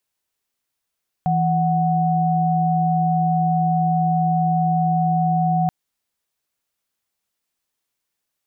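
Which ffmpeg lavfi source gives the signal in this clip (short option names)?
-f lavfi -i "aevalsrc='0.119*(sin(2*PI*164.81*t)+sin(2*PI*739.99*t))':d=4.43:s=44100"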